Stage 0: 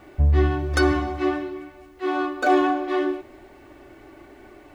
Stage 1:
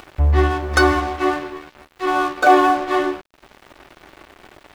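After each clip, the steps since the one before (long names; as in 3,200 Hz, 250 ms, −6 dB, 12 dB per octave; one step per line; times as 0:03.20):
octave-band graphic EQ 125/250/1,000 Hz −10/−4/+5 dB
in parallel at +1 dB: upward compression, threshold −24 dBFS
on the sum: dead-zone distortion −30 dBFS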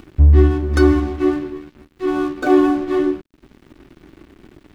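low shelf with overshoot 430 Hz +13 dB, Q 1.5
level −7.5 dB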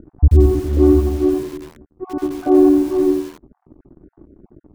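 time-frequency cells dropped at random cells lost 20%
Bessel low-pass filter 640 Hz, order 4
feedback echo at a low word length 86 ms, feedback 35%, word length 6 bits, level −5 dB
level +1 dB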